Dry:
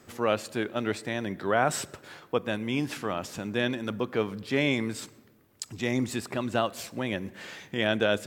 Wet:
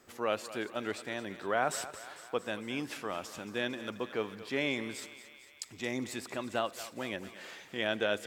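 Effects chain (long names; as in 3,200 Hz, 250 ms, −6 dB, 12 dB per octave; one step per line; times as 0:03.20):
parametric band 120 Hz −8.5 dB 2 octaves
feedback echo with a high-pass in the loop 225 ms, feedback 66%, high-pass 560 Hz, level −13 dB
level −5 dB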